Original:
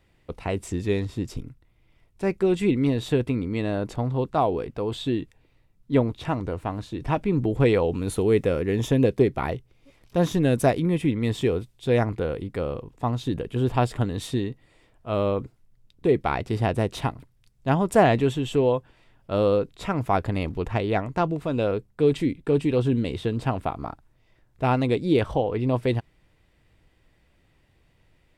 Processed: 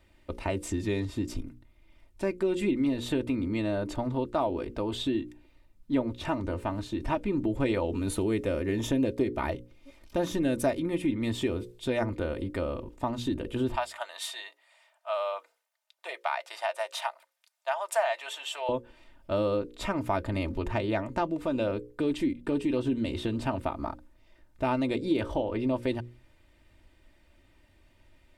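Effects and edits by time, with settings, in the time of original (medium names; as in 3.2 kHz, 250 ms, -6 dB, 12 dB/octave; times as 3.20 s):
13.75–18.69 s: elliptic high-pass 660 Hz, stop band 70 dB
whole clip: hum notches 60/120/180/240/300/360/420/480/540 Hz; comb 3.3 ms, depth 64%; compression 2:1, threshold -29 dBFS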